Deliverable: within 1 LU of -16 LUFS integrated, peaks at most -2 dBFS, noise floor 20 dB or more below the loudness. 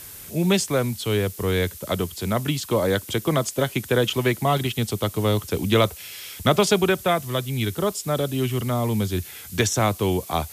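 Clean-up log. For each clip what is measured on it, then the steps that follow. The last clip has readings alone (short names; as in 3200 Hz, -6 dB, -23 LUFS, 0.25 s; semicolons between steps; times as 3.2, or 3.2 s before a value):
noise floor -41 dBFS; noise floor target -43 dBFS; loudness -23.0 LUFS; peak -5.0 dBFS; loudness target -16.0 LUFS
-> denoiser 6 dB, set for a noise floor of -41 dBFS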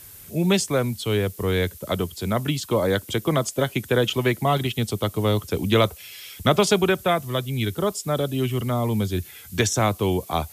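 noise floor -44 dBFS; loudness -23.5 LUFS; peak -5.0 dBFS; loudness target -16.0 LUFS
-> gain +7.5 dB; limiter -2 dBFS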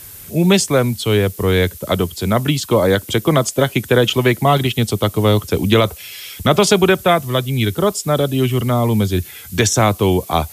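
loudness -16.5 LUFS; peak -2.0 dBFS; noise floor -37 dBFS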